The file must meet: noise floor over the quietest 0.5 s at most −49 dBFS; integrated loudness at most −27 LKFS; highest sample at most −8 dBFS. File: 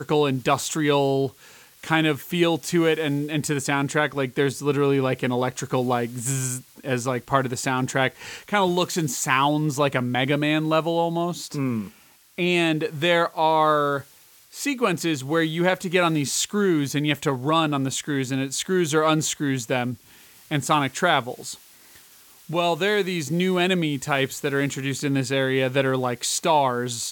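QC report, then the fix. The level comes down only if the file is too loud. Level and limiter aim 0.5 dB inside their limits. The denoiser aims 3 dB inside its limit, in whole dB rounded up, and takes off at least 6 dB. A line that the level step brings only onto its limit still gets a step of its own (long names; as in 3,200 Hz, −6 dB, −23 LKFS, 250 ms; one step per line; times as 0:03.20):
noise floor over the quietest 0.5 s −53 dBFS: in spec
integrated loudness −23.0 LKFS: out of spec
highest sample −5.5 dBFS: out of spec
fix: level −4.5 dB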